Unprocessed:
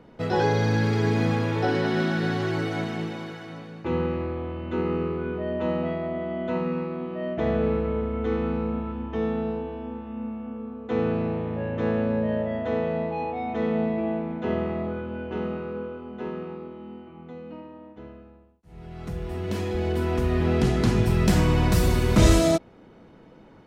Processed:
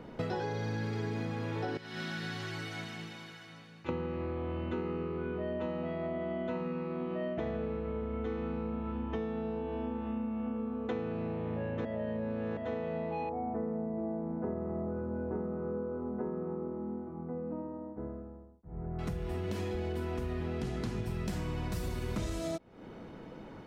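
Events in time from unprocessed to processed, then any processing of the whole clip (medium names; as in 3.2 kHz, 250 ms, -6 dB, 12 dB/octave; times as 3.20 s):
1.77–3.89 s: amplifier tone stack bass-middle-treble 5-5-5
11.85–12.57 s: reverse
13.29–18.99 s: Gaussian low-pass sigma 6.7 samples
whole clip: compression 16:1, threshold -35 dBFS; trim +3 dB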